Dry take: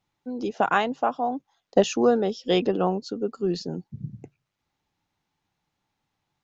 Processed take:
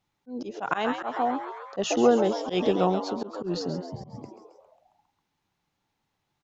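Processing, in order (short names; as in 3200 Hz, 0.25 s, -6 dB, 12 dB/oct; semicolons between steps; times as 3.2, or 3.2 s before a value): frequency-shifting echo 0.135 s, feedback 61%, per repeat +100 Hz, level -11 dB; auto swell 0.118 s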